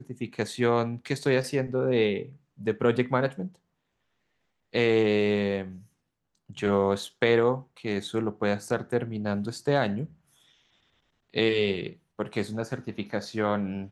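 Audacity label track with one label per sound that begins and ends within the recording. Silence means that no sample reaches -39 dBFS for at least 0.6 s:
4.740000	5.780000	sound
6.500000	10.060000	sound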